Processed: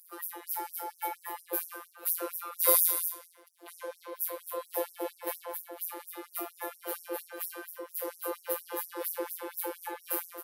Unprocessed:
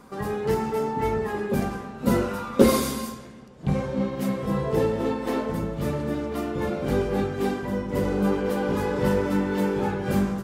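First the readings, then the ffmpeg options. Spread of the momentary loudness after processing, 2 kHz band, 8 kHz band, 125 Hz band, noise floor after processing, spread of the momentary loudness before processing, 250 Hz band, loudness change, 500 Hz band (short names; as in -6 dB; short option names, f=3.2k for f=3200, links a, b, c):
14 LU, -10.0 dB, +5.0 dB, under -40 dB, -61 dBFS, 5 LU, -22.0 dB, -7.5 dB, -13.5 dB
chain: -af "aexciter=amount=6:drive=9.1:freq=9.9k,afftfilt=real='hypot(re,im)*cos(PI*b)':imag='0':win_size=1024:overlap=0.75,afftfilt=real='re*gte(b*sr/1024,290*pow(5500/290,0.5+0.5*sin(2*PI*4.3*pts/sr)))':imag='im*gte(b*sr/1024,290*pow(5500/290,0.5+0.5*sin(2*PI*4.3*pts/sr)))':win_size=1024:overlap=0.75,volume=-3dB"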